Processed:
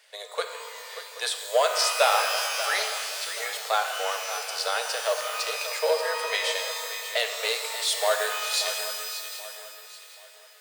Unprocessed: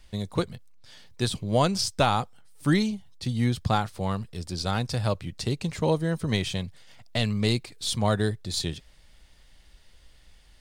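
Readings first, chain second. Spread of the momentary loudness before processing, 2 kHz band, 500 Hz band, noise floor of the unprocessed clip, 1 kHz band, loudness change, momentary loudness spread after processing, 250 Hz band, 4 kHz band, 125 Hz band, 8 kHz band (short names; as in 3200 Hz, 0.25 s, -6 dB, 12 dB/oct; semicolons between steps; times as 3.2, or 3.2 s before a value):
10 LU, +8.0 dB, +2.5 dB, -55 dBFS, +3.0 dB, +1.0 dB, 15 LU, under -35 dB, +5.0 dB, under -40 dB, +7.5 dB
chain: high shelf 5300 Hz +5 dB; in parallel at -6.5 dB: hard clip -23 dBFS, distortion -9 dB; on the sum: rippled Chebyshev high-pass 440 Hz, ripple 6 dB; swung echo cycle 0.779 s, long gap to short 3:1, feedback 33%, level -12 dB; shimmer reverb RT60 2.1 s, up +12 st, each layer -2 dB, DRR 5.5 dB; gain +2.5 dB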